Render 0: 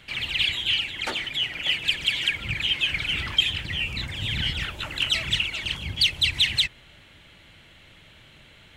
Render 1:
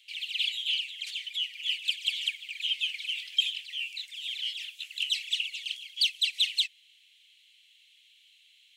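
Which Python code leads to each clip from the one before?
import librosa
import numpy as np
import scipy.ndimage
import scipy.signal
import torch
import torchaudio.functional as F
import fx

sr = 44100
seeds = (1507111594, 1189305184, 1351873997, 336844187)

y = scipy.signal.sosfilt(scipy.signal.butter(6, 2600.0, 'highpass', fs=sr, output='sos'), x)
y = y * 10.0 ** (-4.5 / 20.0)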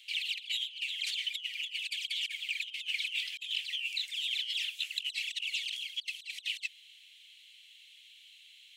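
y = fx.over_compress(x, sr, threshold_db=-36.0, ratio=-0.5)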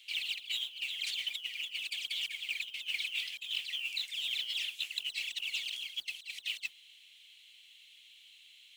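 y = fx.mod_noise(x, sr, seeds[0], snr_db=22)
y = y * 10.0 ** (-1.5 / 20.0)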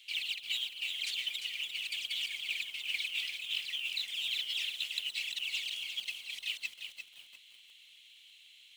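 y = fx.echo_crushed(x, sr, ms=348, feedback_pct=35, bits=9, wet_db=-7.0)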